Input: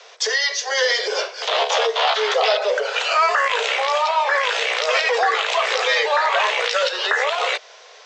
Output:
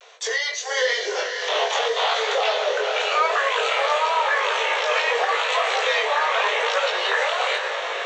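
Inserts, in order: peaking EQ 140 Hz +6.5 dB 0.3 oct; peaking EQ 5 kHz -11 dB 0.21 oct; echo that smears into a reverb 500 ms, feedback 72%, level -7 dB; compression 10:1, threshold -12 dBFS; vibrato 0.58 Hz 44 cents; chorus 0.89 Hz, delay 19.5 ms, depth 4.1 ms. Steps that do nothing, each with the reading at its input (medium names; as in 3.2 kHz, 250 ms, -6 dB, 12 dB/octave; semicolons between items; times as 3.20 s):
peaking EQ 140 Hz: input has nothing below 360 Hz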